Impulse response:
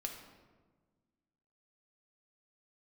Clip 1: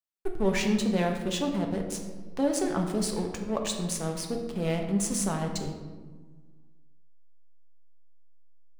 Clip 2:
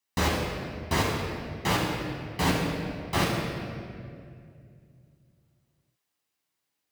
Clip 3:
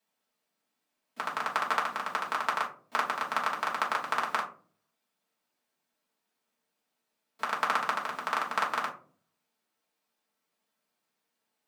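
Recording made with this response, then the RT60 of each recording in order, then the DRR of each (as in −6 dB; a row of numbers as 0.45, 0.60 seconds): 1; 1.4, 2.3, 0.45 seconds; 2.0, −5.0, −3.5 decibels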